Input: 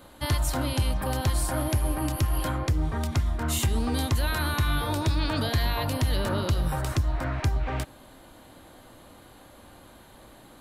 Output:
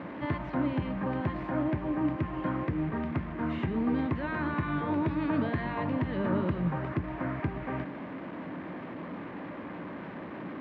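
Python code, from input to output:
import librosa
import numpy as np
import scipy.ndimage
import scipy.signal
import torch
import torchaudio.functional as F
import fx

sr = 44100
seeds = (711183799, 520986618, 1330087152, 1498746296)

y = fx.delta_mod(x, sr, bps=64000, step_db=-31.5)
y = fx.cabinet(y, sr, low_hz=170.0, low_slope=12, high_hz=2000.0, hz=(180.0, 290.0, 510.0, 770.0, 1400.0), db=(10, 4, -3, -6, -6))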